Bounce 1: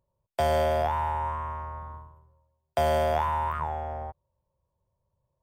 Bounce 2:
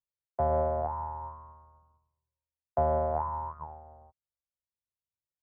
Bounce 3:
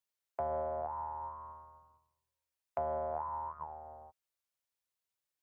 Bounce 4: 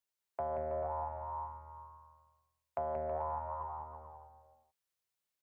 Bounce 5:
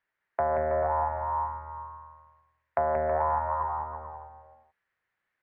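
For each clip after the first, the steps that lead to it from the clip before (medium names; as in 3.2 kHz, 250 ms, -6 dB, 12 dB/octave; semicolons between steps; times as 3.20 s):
Chebyshev low-pass 1.1 kHz, order 3; upward expansion 2.5:1, over -43 dBFS
bass shelf 270 Hz -11.5 dB; compression 2:1, threshold -48 dBFS, peak gain reduction 12.5 dB; trim +5 dB
bouncing-ball echo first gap 180 ms, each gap 0.8×, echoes 5; trim -1.5 dB
resonant low-pass 1.8 kHz, resonance Q 3.9; trim +9 dB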